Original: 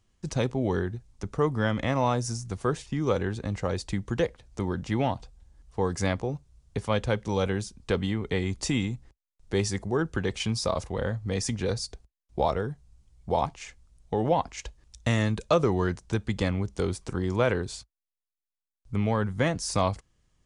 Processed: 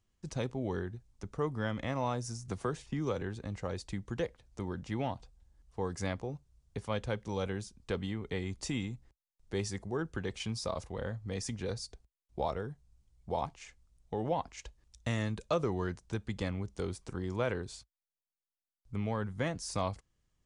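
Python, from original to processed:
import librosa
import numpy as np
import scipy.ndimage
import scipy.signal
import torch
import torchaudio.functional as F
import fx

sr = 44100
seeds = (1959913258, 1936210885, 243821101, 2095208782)

y = fx.band_squash(x, sr, depth_pct=70, at=(2.48, 3.22))
y = y * librosa.db_to_amplitude(-8.5)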